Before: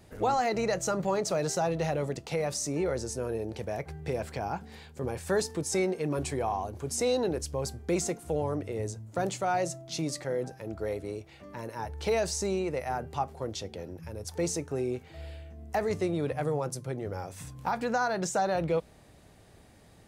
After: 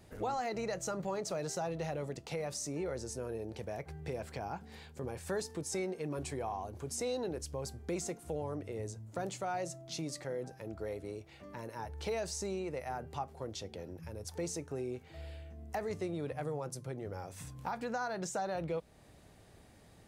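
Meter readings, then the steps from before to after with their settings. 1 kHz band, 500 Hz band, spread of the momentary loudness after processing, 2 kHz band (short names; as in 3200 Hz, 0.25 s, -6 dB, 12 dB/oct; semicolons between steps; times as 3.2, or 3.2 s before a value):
-8.5 dB, -8.0 dB, 8 LU, -8.0 dB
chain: compressor 1.5:1, threshold -40 dBFS, peak gain reduction 6.5 dB; gain -3 dB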